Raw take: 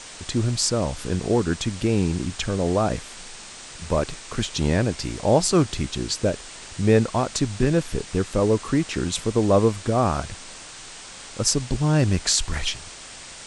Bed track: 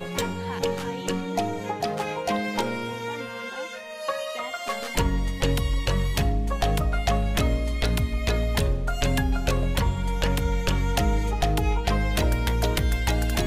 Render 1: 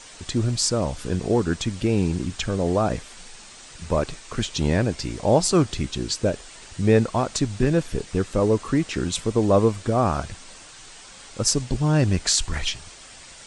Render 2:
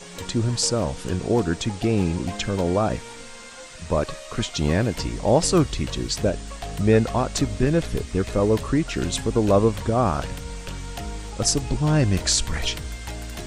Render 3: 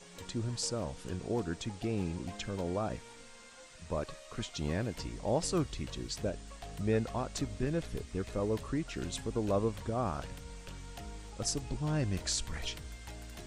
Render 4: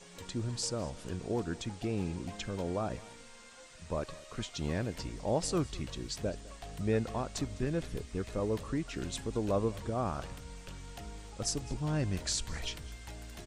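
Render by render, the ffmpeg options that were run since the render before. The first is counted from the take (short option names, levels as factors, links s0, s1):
-af "afftdn=nr=6:nf=-41"
-filter_complex "[1:a]volume=0.316[s0];[0:a][s0]amix=inputs=2:normalize=0"
-af "volume=0.224"
-af "aecho=1:1:205:0.0944"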